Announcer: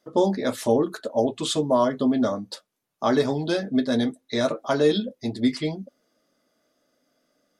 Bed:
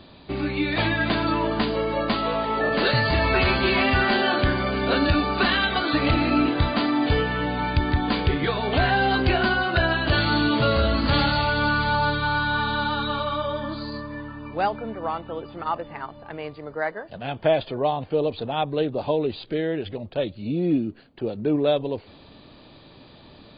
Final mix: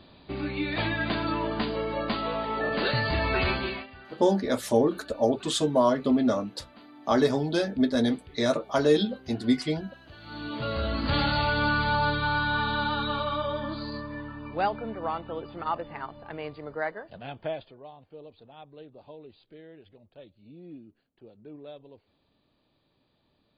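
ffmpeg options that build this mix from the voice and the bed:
-filter_complex "[0:a]adelay=4050,volume=-1.5dB[a];[1:a]volume=19.5dB,afade=t=out:st=3.5:d=0.37:silence=0.0749894,afade=t=in:st=10.2:d=1.24:silence=0.0562341,afade=t=out:st=16.7:d=1.07:silence=0.1[b];[a][b]amix=inputs=2:normalize=0"

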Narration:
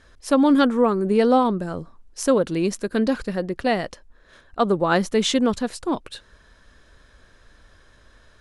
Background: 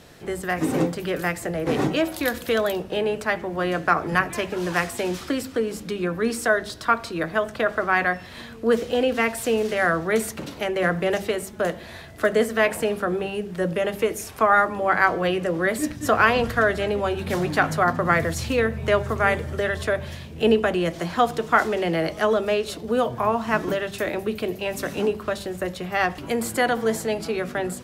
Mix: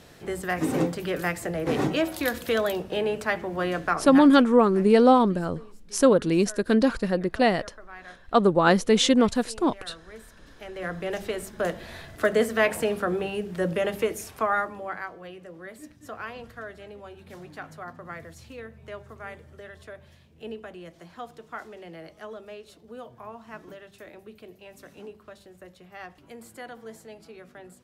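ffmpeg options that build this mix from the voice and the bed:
-filter_complex "[0:a]adelay=3750,volume=0.5dB[a];[1:a]volume=19dB,afade=t=out:st=3.63:d=0.85:silence=0.0891251,afade=t=in:st=10.44:d=1.4:silence=0.0841395,afade=t=out:st=13.87:d=1.22:silence=0.133352[b];[a][b]amix=inputs=2:normalize=0"

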